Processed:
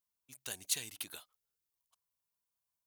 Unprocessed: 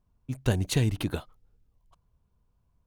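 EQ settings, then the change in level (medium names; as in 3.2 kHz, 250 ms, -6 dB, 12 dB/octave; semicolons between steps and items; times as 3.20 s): differentiator; +1.0 dB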